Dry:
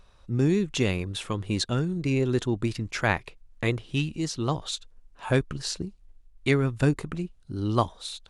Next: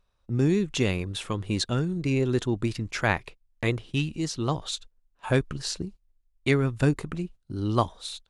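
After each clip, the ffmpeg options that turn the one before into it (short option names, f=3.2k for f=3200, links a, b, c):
-af "agate=range=-15dB:threshold=-42dB:ratio=16:detection=peak"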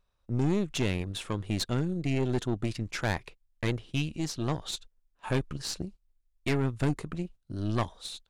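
-af "aeval=exprs='(tanh(12.6*val(0)+0.65)-tanh(0.65))/12.6':c=same"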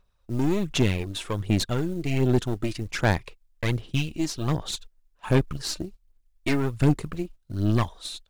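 -af "acrusher=bits=8:mode=log:mix=0:aa=0.000001,aphaser=in_gain=1:out_gain=1:delay=3.3:decay=0.46:speed=1.3:type=sinusoidal,volume=3dB"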